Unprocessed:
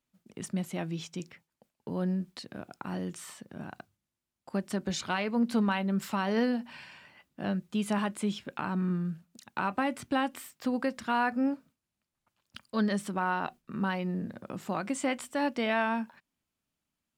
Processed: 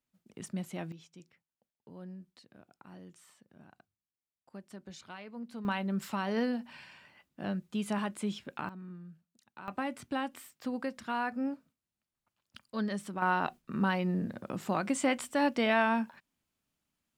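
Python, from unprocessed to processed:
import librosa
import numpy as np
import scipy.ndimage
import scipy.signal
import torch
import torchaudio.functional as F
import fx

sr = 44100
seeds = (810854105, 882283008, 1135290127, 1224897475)

y = fx.gain(x, sr, db=fx.steps((0.0, -4.5), (0.92, -15.5), (5.65, -3.5), (8.69, -16.0), (9.68, -5.5), (13.22, 1.5)))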